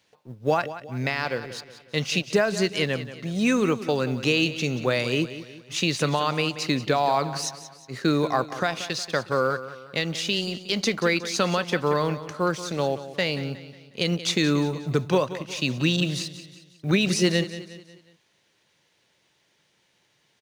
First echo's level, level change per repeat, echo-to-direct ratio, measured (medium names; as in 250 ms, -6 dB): -13.5 dB, -7.0 dB, -12.5 dB